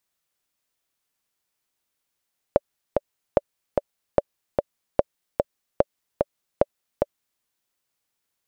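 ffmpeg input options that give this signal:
-f lavfi -i "aevalsrc='pow(10,(-2.5-3.5*gte(mod(t,2*60/148),60/148))/20)*sin(2*PI*574*mod(t,60/148))*exp(-6.91*mod(t,60/148)/0.03)':d=4.86:s=44100"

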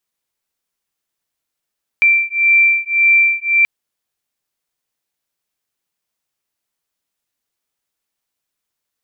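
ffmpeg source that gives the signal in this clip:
-f lavfi -i "aevalsrc='0.224*(sin(2*PI*2350*t)+sin(2*PI*2351.8*t))':d=1.63:s=44100"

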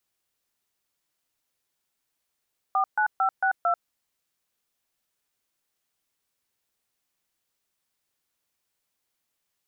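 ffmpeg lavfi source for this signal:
-f lavfi -i "aevalsrc='0.075*clip(min(mod(t,0.225),0.09-mod(t,0.225))/0.002,0,1)*(eq(floor(t/0.225),0)*(sin(2*PI*770*mod(t,0.225))+sin(2*PI*1209*mod(t,0.225)))+eq(floor(t/0.225),1)*(sin(2*PI*852*mod(t,0.225))+sin(2*PI*1477*mod(t,0.225)))+eq(floor(t/0.225),2)*(sin(2*PI*770*mod(t,0.225))+sin(2*PI*1336*mod(t,0.225)))+eq(floor(t/0.225),3)*(sin(2*PI*770*mod(t,0.225))+sin(2*PI*1477*mod(t,0.225)))+eq(floor(t/0.225),4)*(sin(2*PI*697*mod(t,0.225))+sin(2*PI*1336*mod(t,0.225))))':d=1.125:s=44100"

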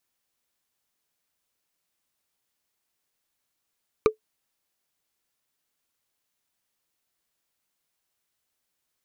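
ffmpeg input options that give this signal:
-f lavfi -i "aevalsrc='0.316*pow(10,-3*t/0.11)*sin(2*PI*434*t)+0.178*pow(10,-3*t/0.033)*sin(2*PI*1196.5*t)+0.1*pow(10,-3*t/0.015)*sin(2*PI*2345.3*t)+0.0562*pow(10,-3*t/0.008)*sin(2*PI*3876.9*t)+0.0316*pow(10,-3*t/0.005)*sin(2*PI*5789.6*t)':d=0.45:s=44100"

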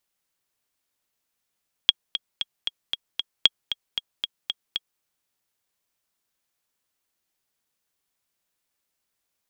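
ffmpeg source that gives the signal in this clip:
-f lavfi -i "aevalsrc='pow(10,(-1-11.5*gte(mod(t,6*60/230),60/230))/20)*sin(2*PI*3290*mod(t,60/230))*exp(-6.91*mod(t,60/230)/0.03)':d=3.13:s=44100"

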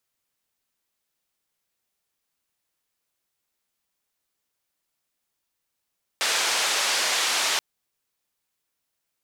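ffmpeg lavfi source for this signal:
-f lavfi -i "anoisesrc=c=white:d=1.38:r=44100:seed=1,highpass=f=560,lowpass=f=6000,volume=-13.3dB"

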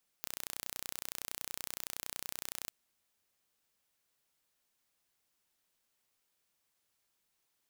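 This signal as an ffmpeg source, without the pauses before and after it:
-f lavfi -i "aevalsrc='0.251*eq(mod(n,1436),0)':d=2.45:s=44100"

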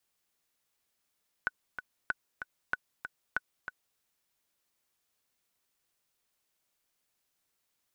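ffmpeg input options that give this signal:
-f lavfi -i "aevalsrc='pow(10,(-16-9*gte(mod(t,2*60/190),60/190))/20)*sin(2*PI*1490*mod(t,60/190))*exp(-6.91*mod(t,60/190)/0.03)':d=2.52:s=44100"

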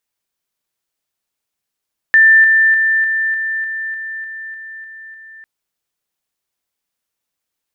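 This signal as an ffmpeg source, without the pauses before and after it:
-f lavfi -i "aevalsrc='pow(10,(-5-3*floor(t/0.3))/20)*sin(2*PI*1780*t)':d=3.3:s=44100"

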